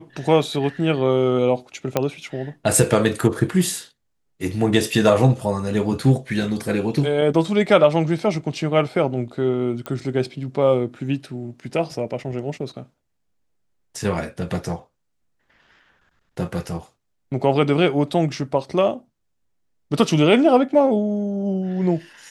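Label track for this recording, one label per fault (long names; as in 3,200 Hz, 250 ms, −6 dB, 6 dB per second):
1.970000	1.970000	click −5 dBFS
9.860000	9.860000	click −15 dBFS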